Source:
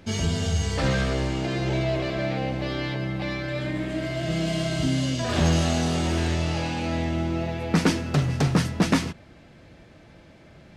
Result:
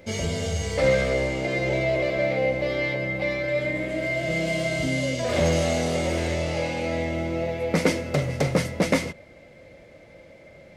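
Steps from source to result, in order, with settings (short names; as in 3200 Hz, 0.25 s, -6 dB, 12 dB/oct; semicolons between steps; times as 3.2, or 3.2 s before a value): high shelf 7700 Hz +8.5 dB; small resonant body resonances 540/2100 Hz, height 16 dB, ringing for 30 ms; gain -4 dB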